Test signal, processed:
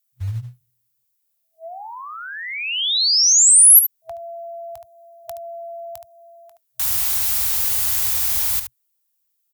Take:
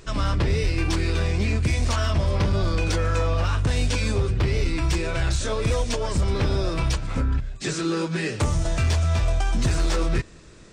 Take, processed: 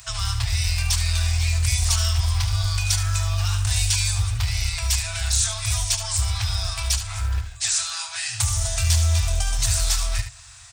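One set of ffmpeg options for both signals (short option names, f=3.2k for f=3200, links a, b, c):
-filter_complex "[0:a]highpass=50,aemphasis=mode=production:type=75fm,aecho=1:1:21|73:0.126|0.335,afftfilt=real='re*(1-between(b*sr/4096,120,650))':imag='im*(1-between(b*sr/4096,120,650))':win_size=4096:overlap=0.75,acrossover=split=130[a][b];[a]acrusher=bits=5:mode=log:mix=0:aa=0.000001[c];[c][b]amix=inputs=2:normalize=0,acrossover=split=140|3000[d][e][f];[e]acompressor=threshold=-39dB:ratio=3[g];[d][g][f]amix=inputs=3:normalize=0,volume=2dB"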